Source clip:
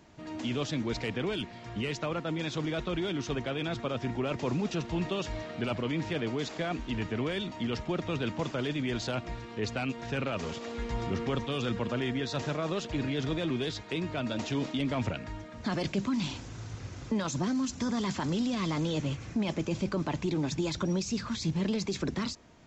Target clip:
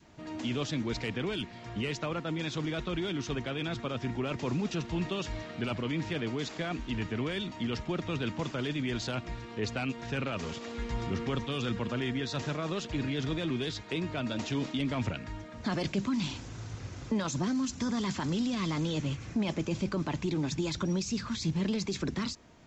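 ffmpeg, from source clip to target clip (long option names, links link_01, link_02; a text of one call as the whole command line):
ffmpeg -i in.wav -af "adynamicequalizer=threshold=0.00501:dfrequency=610:dqfactor=1.1:tfrequency=610:tqfactor=1.1:attack=5:release=100:ratio=0.375:range=2:mode=cutabove:tftype=bell" out.wav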